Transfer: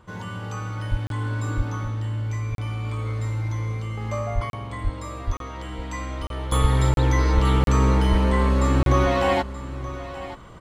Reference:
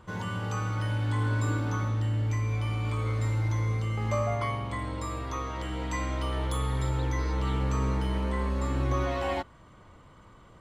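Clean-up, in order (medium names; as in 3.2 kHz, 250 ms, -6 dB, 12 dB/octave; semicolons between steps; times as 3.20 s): de-plosive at 0.90/1.56/4.34/4.83/5.26/6.61/7.34/8.10 s; interpolate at 1.07/2.55/4.50/5.37/6.27/6.94/7.64/8.83 s, 32 ms; inverse comb 928 ms -14 dB; gain correction -9.5 dB, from 6.52 s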